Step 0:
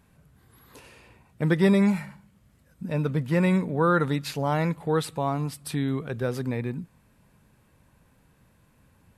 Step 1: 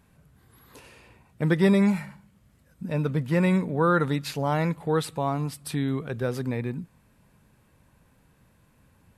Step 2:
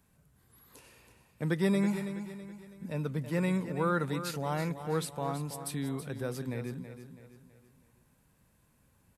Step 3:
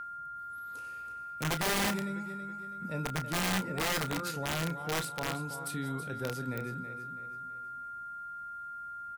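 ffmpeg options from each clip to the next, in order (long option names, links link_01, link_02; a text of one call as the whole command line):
ffmpeg -i in.wav -af anull out.wav
ffmpeg -i in.wav -filter_complex "[0:a]acrossover=split=140|5600[link_01][link_02][link_03];[link_03]acontrast=83[link_04];[link_01][link_02][link_04]amix=inputs=3:normalize=0,aecho=1:1:327|654|981|1308:0.299|0.125|0.0527|0.0221,volume=-8dB" out.wav
ffmpeg -i in.wav -filter_complex "[0:a]aeval=exprs='val(0)+0.0158*sin(2*PI*1400*n/s)':channel_layout=same,aeval=exprs='(mod(15*val(0)+1,2)-1)/15':channel_layout=same,asplit=2[link_01][link_02];[link_02]adelay=31,volume=-10.5dB[link_03];[link_01][link_03]amix=inputs=2:normalize=0,volume=-1.5dB" out.wav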